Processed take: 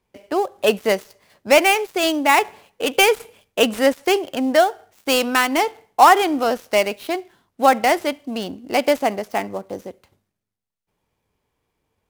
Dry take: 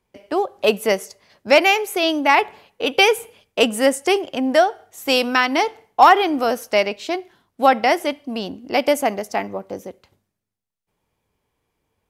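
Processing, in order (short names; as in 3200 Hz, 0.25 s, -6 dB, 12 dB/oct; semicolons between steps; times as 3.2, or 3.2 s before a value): switching dead time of 0.078 ms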